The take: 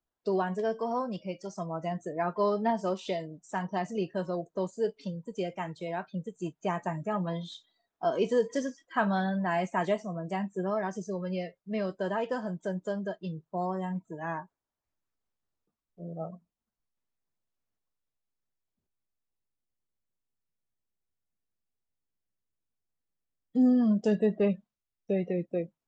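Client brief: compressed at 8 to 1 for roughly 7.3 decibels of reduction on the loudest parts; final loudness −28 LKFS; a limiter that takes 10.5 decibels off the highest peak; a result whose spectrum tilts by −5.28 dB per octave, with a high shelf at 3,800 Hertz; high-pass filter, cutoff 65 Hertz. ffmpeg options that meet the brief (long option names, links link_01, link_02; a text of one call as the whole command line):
ffmpeg -i in.wav -af "highpass=65,highshelf=frequency=3800:gain=-6.5,acompressor=threshold=-27dB:ratio=8,volume=9.5dB,alimiter=limit=-18.5dB:level=0:latency=1" out.wav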